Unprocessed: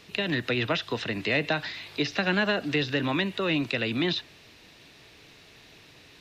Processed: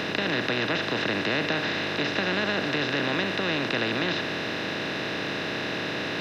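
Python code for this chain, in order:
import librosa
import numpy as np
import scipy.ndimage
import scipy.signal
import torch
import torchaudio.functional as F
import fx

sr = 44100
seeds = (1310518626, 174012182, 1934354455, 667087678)

y = fx.bin_compress(x, sr, power=0.2)
y = F.gain(torch.from_numpy(y), -7.5).numpy()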